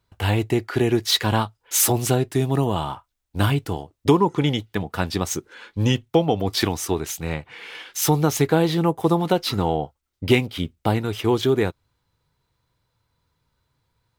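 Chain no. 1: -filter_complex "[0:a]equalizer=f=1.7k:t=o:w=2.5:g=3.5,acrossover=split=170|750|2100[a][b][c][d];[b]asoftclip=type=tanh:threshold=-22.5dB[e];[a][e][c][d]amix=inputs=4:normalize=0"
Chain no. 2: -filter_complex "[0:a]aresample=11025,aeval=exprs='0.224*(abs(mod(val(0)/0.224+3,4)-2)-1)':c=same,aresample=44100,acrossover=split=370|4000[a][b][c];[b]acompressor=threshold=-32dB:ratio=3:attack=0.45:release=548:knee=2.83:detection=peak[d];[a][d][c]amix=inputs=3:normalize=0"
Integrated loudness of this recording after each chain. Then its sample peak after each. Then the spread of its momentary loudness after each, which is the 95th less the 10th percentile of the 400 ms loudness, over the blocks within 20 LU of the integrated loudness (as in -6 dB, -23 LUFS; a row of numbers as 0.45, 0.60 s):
-23.0, -26.5 LUFS; -5.0, -11.5 dBFS; 11, 10 LU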